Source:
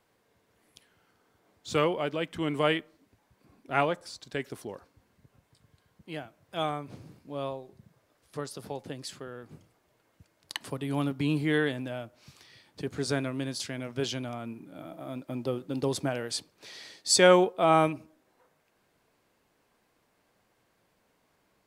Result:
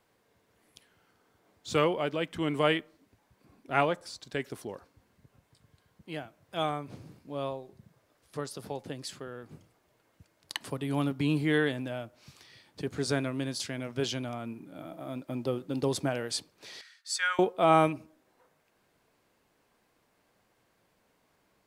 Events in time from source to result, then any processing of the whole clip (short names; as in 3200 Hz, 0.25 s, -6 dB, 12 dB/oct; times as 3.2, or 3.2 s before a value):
16.81–17.39 ladder high-pass 1300 Hz, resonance 60%